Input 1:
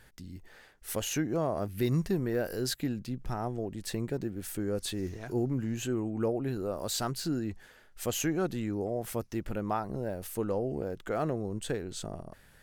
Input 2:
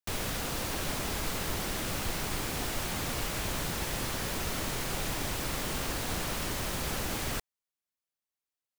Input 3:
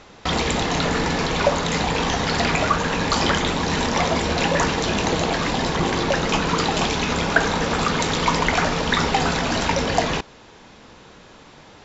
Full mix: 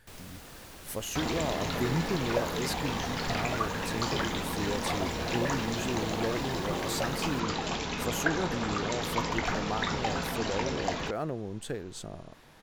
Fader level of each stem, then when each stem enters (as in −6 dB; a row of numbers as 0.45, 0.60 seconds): −2.5, −14.0, −11.5 decibels; 0.00, 0.00, 0.90 seconds